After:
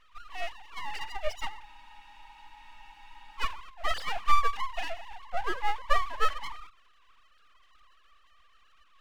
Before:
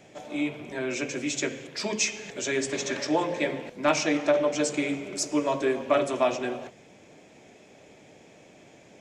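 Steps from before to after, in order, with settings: sine-wave speech; full-wave rectifier; spectral freeze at 1.68, 1.69 s

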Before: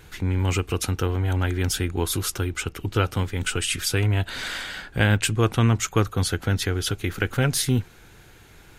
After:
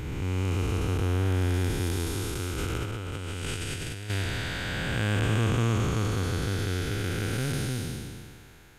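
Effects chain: time blur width 0.69 s; 2.58–4.1 negative-ratio compressor -32 dBFS, ratio -0.5

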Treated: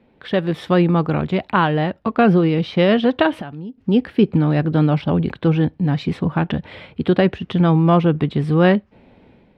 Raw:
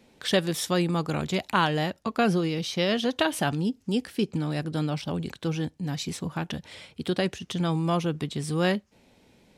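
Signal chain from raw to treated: AGC gain up to 9.5 dB; air absorption 460 m; 3.33–3.78 compressor 10:1, threshold -32 dBFS, peak gain reduction 16.5 dB; gain +3.5 dB

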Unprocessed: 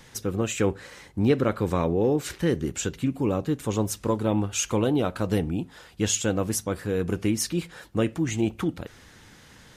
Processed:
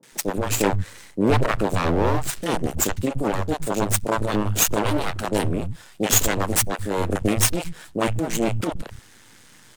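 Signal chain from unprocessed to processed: HPF 100 Hz 24 dB/oct; bell 8500 Hz +8.5 dB 0.6 oct; added harmonics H 6 -9 dB, 8 -35 dB, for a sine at -7 dBFS; half-wave rectifier; three bands offset in time mids, highs, lows 30/120 ms, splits 150/580 Hz; gain +4 dB

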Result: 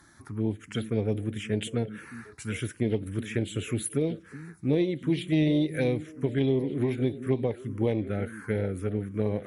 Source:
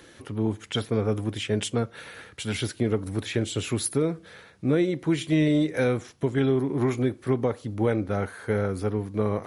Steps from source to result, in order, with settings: added harmonics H 3 -22 dB, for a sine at -11 dBFS; delay with a stepping band-pass 0.378 s, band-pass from 200 Hz, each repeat 1.4 oct, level -9 dB; envelope phaser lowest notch 470 Hz, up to 1400 Hz, full sweep at -20.5 dBFS

